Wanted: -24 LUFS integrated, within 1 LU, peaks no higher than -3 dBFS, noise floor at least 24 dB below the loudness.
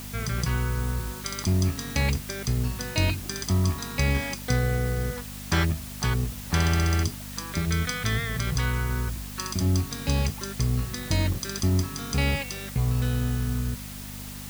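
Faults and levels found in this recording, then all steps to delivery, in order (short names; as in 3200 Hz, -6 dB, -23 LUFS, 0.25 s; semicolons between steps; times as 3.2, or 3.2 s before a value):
hum 50 Hz; harmonics up to 250 Hz; hum level -38 dBFS; noise floor -38 dBFS; noise floor target -51 dBFS; loudness -27.0 LUFS; peak -9.5 dBFS; loudness target -24.0 LUFS
-> de-hum 50 Hz, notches 5; noise print and reduce 13 dB; gain +3 dB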